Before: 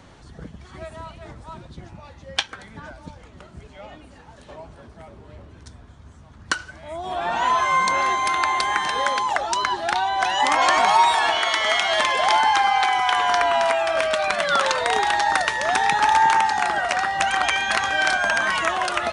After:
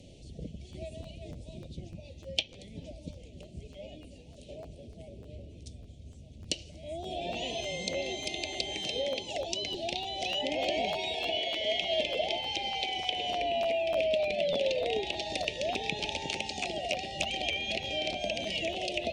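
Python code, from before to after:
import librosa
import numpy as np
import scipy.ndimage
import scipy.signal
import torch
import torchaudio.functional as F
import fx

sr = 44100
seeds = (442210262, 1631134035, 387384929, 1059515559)

y = scipy.signal.sosfilt(scipy.signal.ellip(3, 1.0, 70, [610.0, 2600.0], 'bandstop', fs=sr, output='sos'), x)
y = fx.env_lowpass_down(y, sr, base_hz=2700.0, full_db=-24.0)
y = fx.buffer_crackle(y, sr, first_s=0.72, period_s=0.3, block=512, kind='repeat')
y = y * 10.0 ** (-2.5 / 20.0)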